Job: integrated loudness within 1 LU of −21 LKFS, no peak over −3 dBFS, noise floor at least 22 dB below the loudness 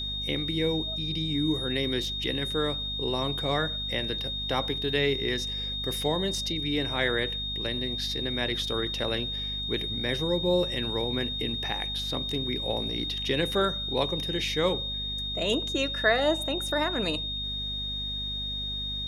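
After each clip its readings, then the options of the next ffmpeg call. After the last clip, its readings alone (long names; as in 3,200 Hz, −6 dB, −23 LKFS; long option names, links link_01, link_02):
mains hum 50 Hz; hum harmonics up to 250 Hz; level of the hum −37 dBFS; interfering tone 3,700 Hz; level of the tone −31 dBFS; integrated loudness −28.0 LKFS; sample peak −10.5 dBFS; target loudness −21.0 LKFS
→ -af "bandreject=frequency=50:width_type=h:width=4,bandreject=frequency=100:width_type=h:width=4,bandreject=frequency=150:width_type=h:width=4,bandreject=frequency=200:width_type=h:width=4,bandreject=frequency=250:width_type=h:width=4"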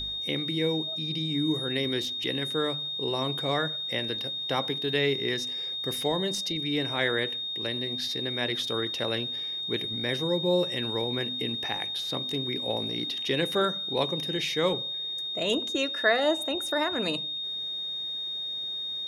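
mains hum none found; interfering tone 3,700 Hz; level of the tone −31 dBFS
→ -af "bandreject=frequency=3700:width=30"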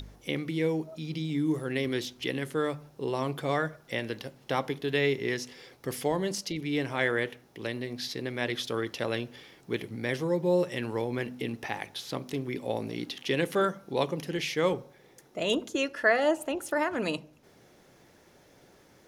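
interfering tone none found; integrated loudness −31.0 LKFS; sample peak −11.0 dBFS; target loudness −21.0 LKFS
→ -af "volume=10dB,alimiter=limit=-3dB:level=0:latency=1"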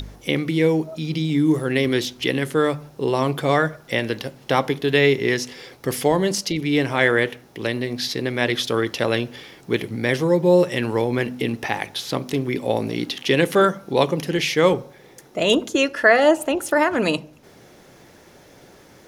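integrated loudness −21.0 LKFS; sample peak −3.0 dBFS; background noise floor −49 dBFS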